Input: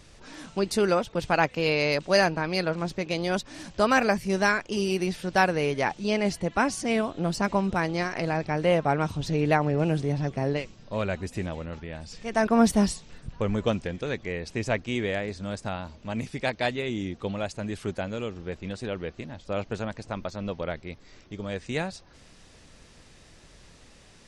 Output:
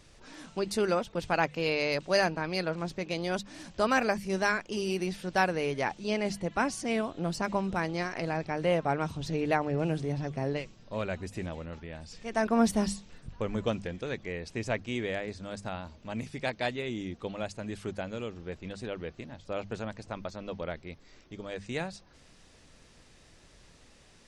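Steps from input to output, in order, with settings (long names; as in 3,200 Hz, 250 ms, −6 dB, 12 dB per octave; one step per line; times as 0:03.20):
mains-hum notches 50/100/150/200 Hz
level −4.5 dB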